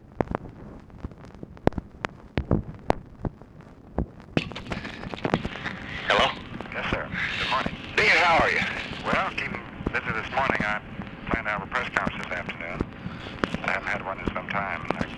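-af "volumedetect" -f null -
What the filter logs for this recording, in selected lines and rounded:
mean_volume: -28.3 dB
max_volume: -2.6 dB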